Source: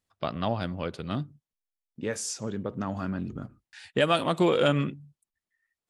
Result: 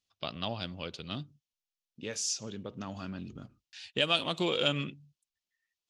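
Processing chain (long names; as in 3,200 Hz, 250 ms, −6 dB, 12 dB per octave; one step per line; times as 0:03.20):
flat-topped bell 4,100 Hz +12 dB
level −8.5 dB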